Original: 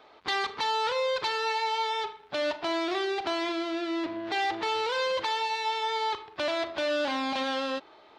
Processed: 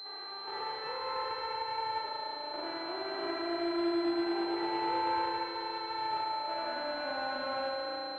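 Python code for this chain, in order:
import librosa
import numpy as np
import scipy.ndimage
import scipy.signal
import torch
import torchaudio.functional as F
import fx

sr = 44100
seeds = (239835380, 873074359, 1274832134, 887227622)

y = fx.spec_blur(x, sr, span_ms=641.0)
y = scipy.signal.sosfilt(scipy.signal.bessel(4, 300.0, 'highpass', norm='mag', fs=sr, output='sos'), y)
y = fx.level_steps(y, sr, step_db=9)
y = fx.echo_wet_lowpass(y, sr, ms=111, feedback_pct=82, hz=1100.0, wet_db=-15.5)
y = fx.rev_spring(y, sr, rt60_s=4.0, pass_ms=(35,), chirp_ms=35, drr_db=-3.5)
y = fx.pwm(y, sr, carrier_hz=4100.0)
y = F.gain(torch.from_numpy(y), -3.0).numpy()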